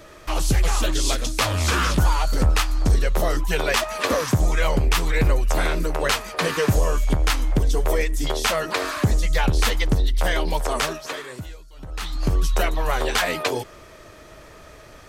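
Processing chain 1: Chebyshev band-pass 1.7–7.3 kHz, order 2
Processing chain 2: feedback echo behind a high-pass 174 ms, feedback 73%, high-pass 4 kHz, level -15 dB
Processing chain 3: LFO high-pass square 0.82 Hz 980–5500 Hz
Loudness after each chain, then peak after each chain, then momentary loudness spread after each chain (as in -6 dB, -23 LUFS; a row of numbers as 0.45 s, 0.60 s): -28.5 LUFS, -22.5 LUFS, -25.0 LUFS; -10.5 dBFS, -8.5 dBFS, -3.5 dBFS; 11 LU, 6 LU, 12 LU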